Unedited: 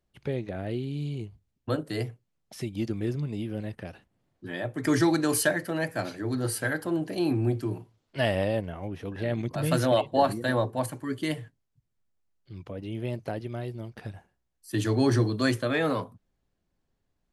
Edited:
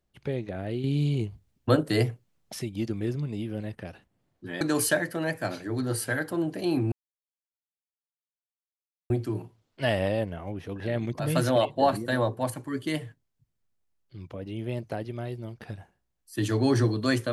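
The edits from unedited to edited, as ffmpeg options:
-filter_complex "[0:a]asplit=5[a][b][c][d][e];[a]atrim=end=0.842[f];[b]atrim=start=0.838:end=2.592,asetpts=PTS-STARTPTS,volume=7dB[g];[c]atrim=start=2.588:end=4.612[h];[d]atrim=start=5.148:end=7.46,asetpts=PTS-STARTPTS,afade=t=out:st=2.308:d=0.004:c=hsin,apad=pad_dur=2.18[i];[e]atrim=start=7.46,asetpts=PTS-STARTPTS,afade=t=in:d=0.004:c=hsin[j];[f][g]acrossfade=d=0.004:c1=hsin:c2=hsin[k];[k][h]acrossfade=d=0.004:c1=hsin:c2=hsin[l];[i][j]concat=n=2:v=0:a=1[m];[l][m]acrossfade=d=0.004:c1=hsin:c2=hsin"

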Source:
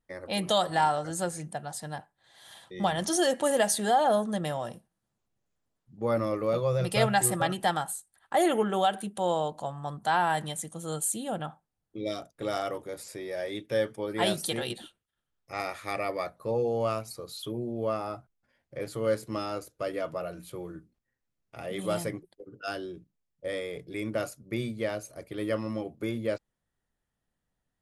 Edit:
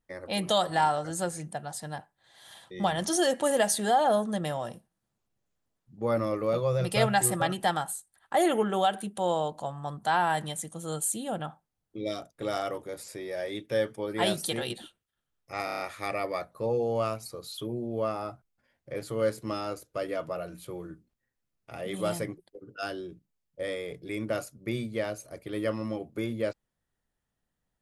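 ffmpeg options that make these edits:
-filter_complex "[0:a]asplit=6[a][b][c][d][e][f];[a]atrim=end=15.682[g];[b]atrim=start=15.648:end=15.682[h];[c]atrim=start=15.648:end=15.682[i];[d]atrim=start=15.648:end=15.682[j];[e]atrim=start=15.648:end=15.682[k];[f]atrim=start=15.648[l];[g][h]acrossfade=d=0.004:c1=hsin:c2=hsin[m];[m][i]acrossfade=d=0.004:c1=hsin:c2=hsin[n];[n][j]acrossfade=d=0.004:c1=hsin:c2=hsin[o];[o][k]acrossfade=d=0.004:c1=hsin:c2=hsin[p];[p][l]acrossfade=d=0.004:c1=hsin:c2=hsin"

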